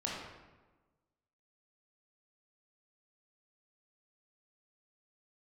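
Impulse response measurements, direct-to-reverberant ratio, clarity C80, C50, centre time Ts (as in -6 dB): -5.0 dB, 2.5 dB, -0.5 dB, 77 ms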